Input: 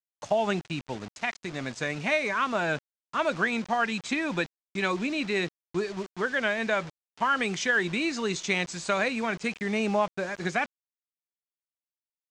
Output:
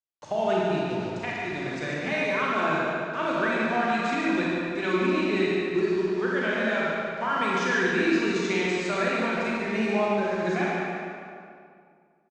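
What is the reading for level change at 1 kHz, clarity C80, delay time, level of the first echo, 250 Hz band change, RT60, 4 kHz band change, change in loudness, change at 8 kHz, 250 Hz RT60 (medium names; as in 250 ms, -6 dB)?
+2.5 dB, -2.5 dB, 145 ms, -6.0 dB, +5.0 dB, 2.3 s, -0.5 dB, +2.5 dB, -4.0 dB, 2.4 s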